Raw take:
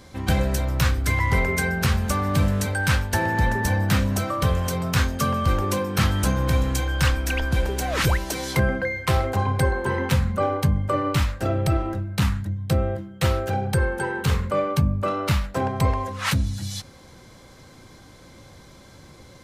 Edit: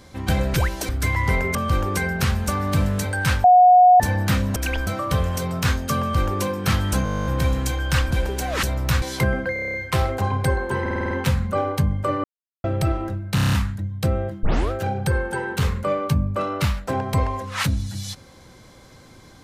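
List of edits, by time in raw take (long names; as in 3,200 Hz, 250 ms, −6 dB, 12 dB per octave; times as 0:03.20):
0:00.54–0:00.93: swap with 0:08.03–0:08.38
0:03.06–0:03.62: beep over 726 Hz −8 dBFS
0:05.31–0:05.73: duplicate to 0:01.59
0:06.35: stutter 0.02 s, 12 plays
0:07.20–0:07.51: move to 0:04.18
0:08.89: stutter 0.03 s, 8 plays
0:09.96: stutter 0.05 s, 7 plays
0:11.09–0:11.49: silence
0:12.20: stutter 0.03 s, 7 plays
0:13.10: tape start 0.28 s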